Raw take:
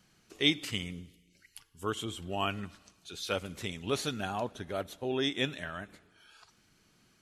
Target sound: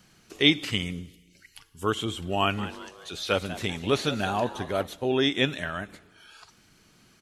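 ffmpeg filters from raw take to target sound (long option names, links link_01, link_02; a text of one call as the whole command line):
ffmpeg -i in.wav -filter_complex "[0:a]acrossover=split=4600[link_01][link_02];[link_02]acompressor=threshold=-49dB:ratio=4:attack=1:release=60[link_03];[link_01][link_03]amix=inputs=2:normalize=0,asplit=3[link_04][link_05][link_06];[link_04]afade=type=out:start_time=2.57:duration=0.02[link_07];[link_05]asplit=5[link_08][link_09][link_10][link_11][link_12];[link_09]adelay=194,afreqshift=140,volume=-14dB[link_13];[link_10]adelay=388,afreqshift=280,volume=-20.9dB[link_14];[link_11]adelay=582,afreqshift=420,volume=-27.9dB[link_15];[link_12]adelay=776,afreqshift=560,volume=-34.8dB[link_16];[link_08][link_13][link_14][link_15][link_16]amix=inputs=5:normalize=0,afade=type=in:start_time=2.57:duration=0.02,afade=type=out:start_time=4.87:duration=0.02[link_17];[link_06]afade=type=in:start_time=4.87:duration=0.02[link_18];[link_07][link_17][link_18]amix=inputs=3:normalize=0,volume=7.5dB" out.wav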